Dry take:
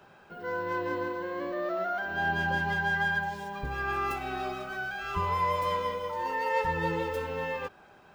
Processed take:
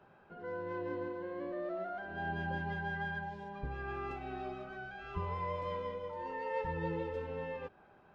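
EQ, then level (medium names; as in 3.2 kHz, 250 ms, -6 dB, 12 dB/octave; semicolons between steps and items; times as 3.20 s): dynamic bell 1.2 kHz, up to -6 dB, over -43 dBFS, Q 1.3; tape spacing loss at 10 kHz 28 dB; -4.0 dB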